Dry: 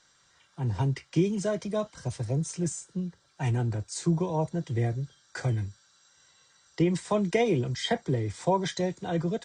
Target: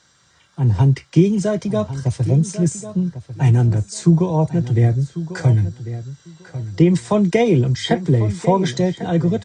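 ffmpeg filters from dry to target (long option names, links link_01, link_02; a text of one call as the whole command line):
ffmpeg -i in.wav -filter_complex "[0:a]highpass=62,lowshelf=frequency=260:gain=9,asplit=2[link_01][link_02];[link_02]adelay=1096,lowpass=frequency=3500:poles=1,volume=-13dB,asplit=2[link_03][link_04];[link_04]adelay=1096,lowpass=frequency=3500:poles=1,volume=0.17[link_05];[link_03][link_05]amix=inputs=2:normalize=0[link_06];[link_01][link_06]amix=inputs=2:normalize=0,volume=6.5dB" out.wav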